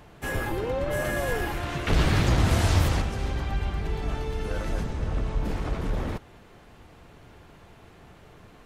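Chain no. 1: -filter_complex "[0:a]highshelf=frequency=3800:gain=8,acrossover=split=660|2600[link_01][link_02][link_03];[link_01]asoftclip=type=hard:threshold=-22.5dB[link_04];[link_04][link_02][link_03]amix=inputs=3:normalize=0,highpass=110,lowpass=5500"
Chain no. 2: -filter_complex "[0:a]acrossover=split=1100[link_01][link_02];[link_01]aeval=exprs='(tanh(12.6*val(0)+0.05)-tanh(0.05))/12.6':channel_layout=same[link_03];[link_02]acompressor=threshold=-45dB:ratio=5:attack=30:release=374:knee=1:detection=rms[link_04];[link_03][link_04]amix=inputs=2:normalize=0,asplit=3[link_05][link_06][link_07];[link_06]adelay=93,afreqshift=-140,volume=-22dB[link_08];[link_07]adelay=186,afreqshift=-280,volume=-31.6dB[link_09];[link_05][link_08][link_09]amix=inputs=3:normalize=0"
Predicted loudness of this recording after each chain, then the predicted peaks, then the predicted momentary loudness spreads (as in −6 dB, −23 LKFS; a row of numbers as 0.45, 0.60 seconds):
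−30.0, −31.0 LKFS; −14.0, −20.0 dBFS; 9, 6 LU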